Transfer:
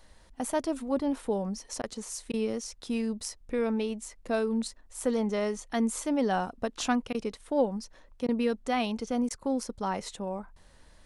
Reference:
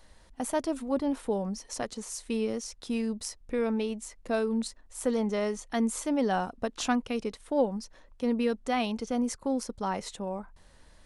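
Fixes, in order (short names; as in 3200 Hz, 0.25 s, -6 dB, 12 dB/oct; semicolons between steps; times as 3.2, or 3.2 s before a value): interpolate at 1.82/2.32/7.13/8.27/9.29, 14 ms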